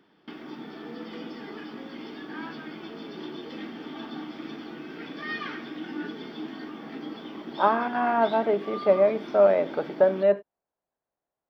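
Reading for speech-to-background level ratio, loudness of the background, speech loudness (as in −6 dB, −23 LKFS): 14.5 dB, −38.0 LKFS, −23.5 LKFS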